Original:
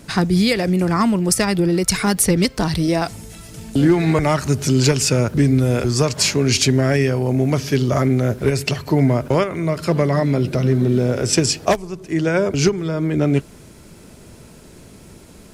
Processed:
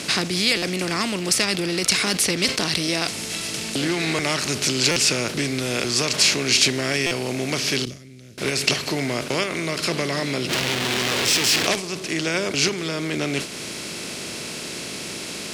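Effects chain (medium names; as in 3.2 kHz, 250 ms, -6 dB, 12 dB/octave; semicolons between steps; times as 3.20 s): spectral levelling over time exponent 0.6; in parallel at +1.5 dB: compression, threshold -21 dBFS, peak gain reduction 12.5 dB; 7.85–8.38 s: on the sum: amplifier tone stack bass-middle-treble 10-0-1; 10.49–11.67 s: Schmitt trigger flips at -27 dBFS; frequency weighting D; buffer glitch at 0.57/4.91/7.06 s, samples 256, times 8; decay stretcher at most 130 dB/s; trim -13.5 dB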